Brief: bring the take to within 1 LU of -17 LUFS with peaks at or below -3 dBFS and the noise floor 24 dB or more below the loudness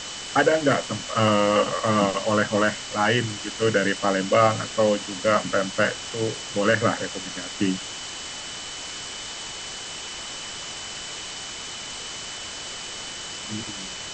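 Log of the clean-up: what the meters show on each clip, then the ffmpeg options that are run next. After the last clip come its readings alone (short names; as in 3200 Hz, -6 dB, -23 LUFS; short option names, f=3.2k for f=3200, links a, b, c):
steady tone 3000 Hz; tone level -39 dBFS; noise floor -35 dBFS; noise floor target -49 dBFS; loudness -25.0 LUFS; peak -5.5 dBFS; loudness target -17.0 LUFS
-> -af "bandreject=f=3k:w=30"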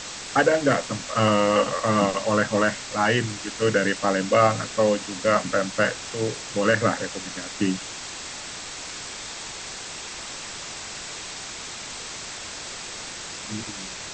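steady tone none; noise floor -36 dBFS; noise floor target -49 dBFS
-> -af "afftdn=nr=13:nf=-36"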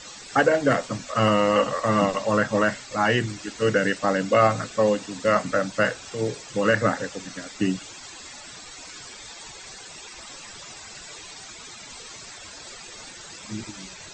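noise floor -42 dBFS; noise floor target -48 dBFS
-> -af "afftdn=nr=6:nf=-42"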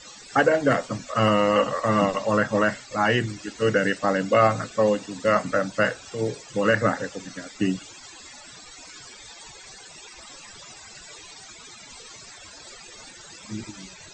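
noise floor -45 dBFS; noise floor target -47 dBFS
-> -af "afftdn=nr=6:nf=-45"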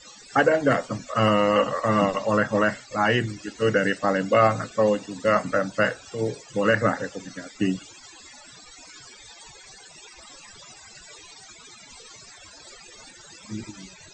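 noise floor -48 dBFS; loudness -23.0 LUFS; peak -6.0 dBFS; loudness target -17.0 LUFS
-> -af "volume=6dB,alimiter=limit=-3dB:level=0:latency=1"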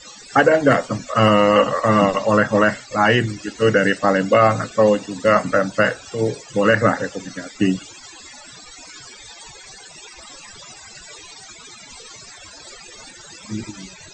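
loudness -17.5 LUFS; peak -3.0 dBFS; noise floor -42 dBFS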